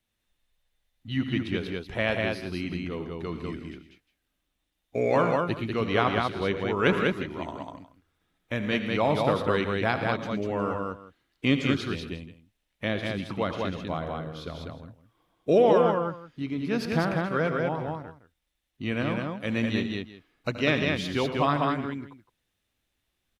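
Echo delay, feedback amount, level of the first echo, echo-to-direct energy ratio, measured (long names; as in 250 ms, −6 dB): 75 ms, repeats not evenly spaced, −15.0 dB, −2.0 dB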